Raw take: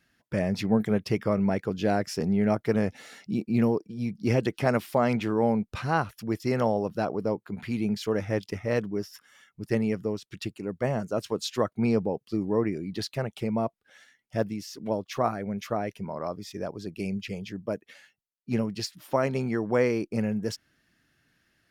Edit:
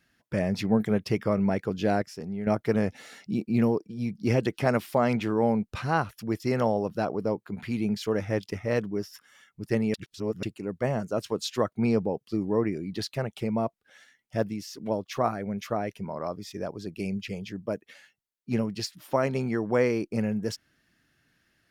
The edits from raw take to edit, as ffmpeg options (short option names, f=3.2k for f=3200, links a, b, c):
-filter_complex "[0:a]asplit=5[a][b][c][d][e];[a]atrim=end=2.022[f];[b]atrim=start=2.018:end=2.472,asetpts=PTS-STARTPTS,volume=-9dB[g];[c]atrim=start=2.468:end=9.942[h];[d]atrim=start=9.938:end=10.432,asetpts=PTS-STARTPTS,areverse[i];[e]atrim=start=10.428[j];[f][g]acrossfade=d=0.004:c1=hsin:c2=hsin[k];[k][h]acrossfade=d=0.004:c1=hsin:c2=hsin[l];[l][i]acrossfade=d=0.004:c1=hsin:c2=hsin[m];[m][j]acrossfade=d=0.004:c1=hsin:c2=hsin"